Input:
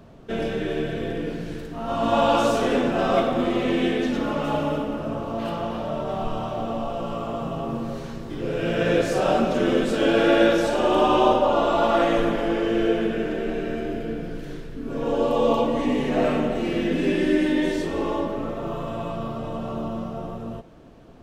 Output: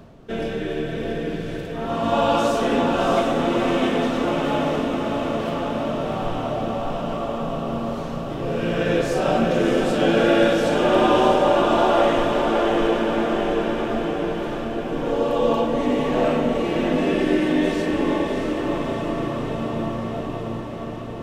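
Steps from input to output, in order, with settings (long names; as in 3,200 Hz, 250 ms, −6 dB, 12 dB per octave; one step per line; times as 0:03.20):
reversed playback
upward compression, threshold −35 dBFS
reversed playback
feedback delay with all-pass diffusion 658 ms, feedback 68%, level −4.5 dB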